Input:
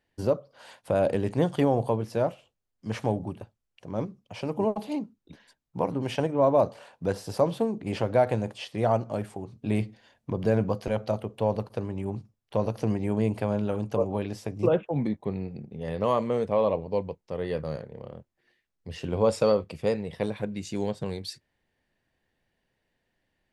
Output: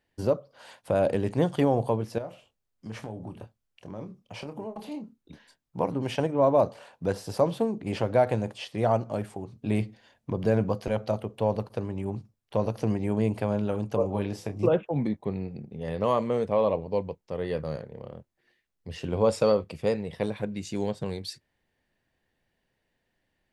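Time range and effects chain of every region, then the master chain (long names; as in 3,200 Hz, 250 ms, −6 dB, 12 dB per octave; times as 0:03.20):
0:02.18–0:05.78: downward compressor 4 to 1, threshold −35 dBFS + double-tracking delay 27 ms −9 dB
0:14.01–0:14.64: double-tracking delay 30 ms −9.5 dB + hum removal 84.1 Hz, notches 15
whole clip: no processing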